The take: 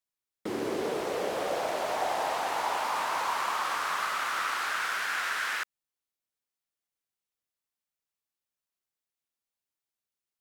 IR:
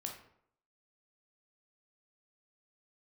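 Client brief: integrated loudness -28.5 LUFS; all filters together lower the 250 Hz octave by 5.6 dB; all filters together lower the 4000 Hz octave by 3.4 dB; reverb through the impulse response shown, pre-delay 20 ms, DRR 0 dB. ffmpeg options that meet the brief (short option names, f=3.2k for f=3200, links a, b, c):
-filter_complex "[0:a]equalizer=f=250:t=o:g=-8.5,equalizer=f=4k:t=o:g=-4.5,asplit=2[a][b];[1:a]atrim=start_sample=2205,adelay=20[c];[b][c]afir=irnorm=-1:irlink=0,volume=1.5dB[d];[a][d]amix=inputs=2:normalize=0"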